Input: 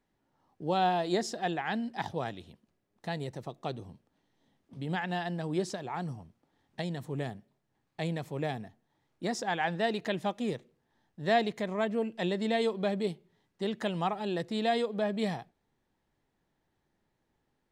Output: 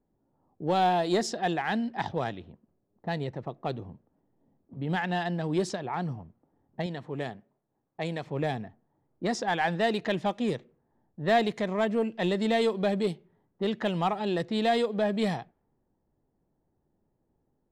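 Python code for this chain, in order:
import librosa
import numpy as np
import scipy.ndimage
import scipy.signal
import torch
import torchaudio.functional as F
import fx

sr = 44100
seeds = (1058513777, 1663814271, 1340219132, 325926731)

p1 = fx.env_lowpass(x, sr, base_hz=660.0, full_db=-26.5)
p2 = fx.low_shelf(p1, sr, hz=190.0, db=-10.5, at=(6.86, 8.27))
p3 = np.clip(p2, -10.0 ** (-26.5 / 20.0), 10.0 ** (-26.5 / 20.0))
y = p2 + (p3 * 10.0 ** (-4.0 / 20.0))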